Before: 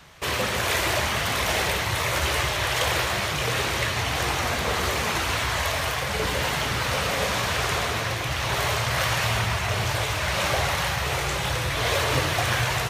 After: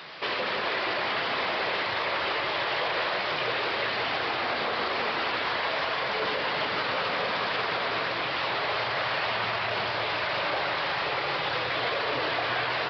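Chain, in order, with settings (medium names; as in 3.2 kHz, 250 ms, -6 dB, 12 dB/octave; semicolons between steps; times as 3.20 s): one-bit delta coder 64 kbps, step -35 dBFS; high-pass 290 Hz 12 dB/octave; peak limiter -20 dBFS, peak gain reduction 6.5 dB; on a send: bucket-brigade echo 176 ms, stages 2048, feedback 77%, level -8 dB; on the sum: resampled via 11.025 kHz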